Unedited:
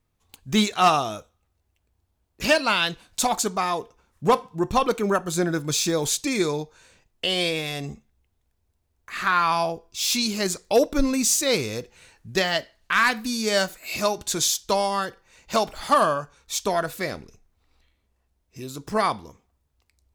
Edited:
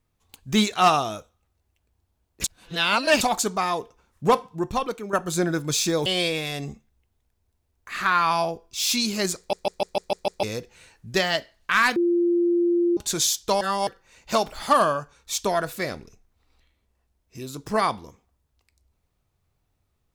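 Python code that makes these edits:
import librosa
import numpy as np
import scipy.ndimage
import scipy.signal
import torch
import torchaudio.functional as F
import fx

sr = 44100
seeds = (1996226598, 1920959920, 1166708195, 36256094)

y = fx.edit(x, sr, fx.reverse_span(start_s=2.44, length_s=0.77),
    fx.fade_out_to(start_s=4.38, length_s=0.75, floor_db=-13.0),
    fx.cut(start_s=6.06, length_s=1.21),
    fx.stutter_over(start_s=10.59, slice_s=0.15, count=7),
    fx.bleep(start_s=13.17, length_s=1.01, hz=346.0, db=-17.5),
    fx.reverse_span(start_s=14.82, length_s=0.26), tone=tone)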